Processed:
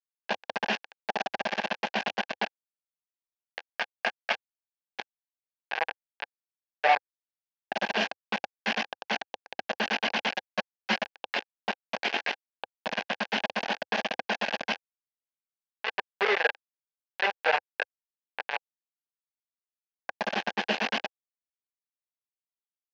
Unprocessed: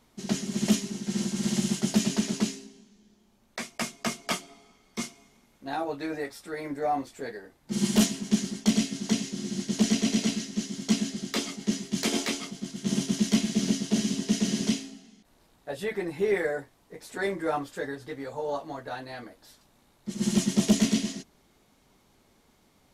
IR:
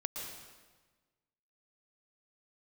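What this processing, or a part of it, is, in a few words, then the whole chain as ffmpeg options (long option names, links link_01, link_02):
hand-held game console: -filter_complex "[0:a]acrusher=bits=3:mix=0:aa=0.000001,lowpass=6900,highpass=480,equalizer=frequency=510:width_type=q:width=4:gain=5,equalizer=frequency=810:width_type=q:width=4:gain=9,equalizer=frequency=1300:width_type=q:width=4:gain=-7,equalizer=frequency=2600:width_type=q:width=4:gain=6,equalizer=frequency=3800:width_type=q:width=4:gain=-4,lowpass=frequency=4200:width=0.5412,lowpass=frequency=4200:width=1.3066,equalizer=frequency=90:width=3.8:gain=-6,asplit=3[link_01][link_02][link_03];[link_01]afade=type=out:start_time=10.31:duration=0.02[link_04];[link_02]aecho=1:1:5.4:1,afade=type=in:start_time=10.31:duration=0.02,afade=type=out:start_time=10.95:duration=0.02[link_05];[link_03]afade=type=in:start_time=10.95:duration=0.02[link_06];[link_04][link_05][link_06]amix=inputs=3:normalize=0,equalizer=frequency=315:width_type=o:width=0.33:gain=-9,equalizer=frequency=1600:width_type=o:width=0.33:gain=11,equalizer=frequency=8000:width_type=o:width=0.33:gain=-8"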